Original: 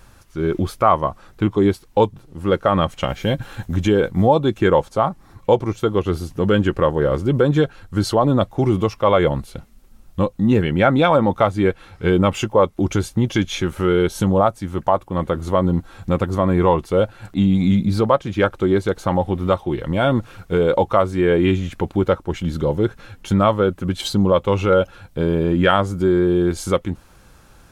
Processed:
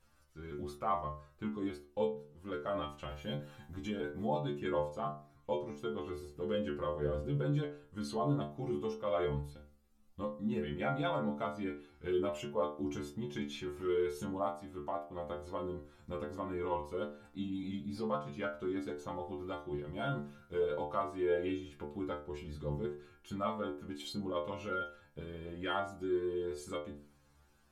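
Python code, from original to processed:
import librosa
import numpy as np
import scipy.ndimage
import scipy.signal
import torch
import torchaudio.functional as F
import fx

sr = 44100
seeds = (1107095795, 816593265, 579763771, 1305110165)

y = fx.stiff_resonator(x, sr, f0_hz=71.0, decay_s=0.52, stiffness=0.002)
y = y * 10.0 ** (-9.0 / 20.0)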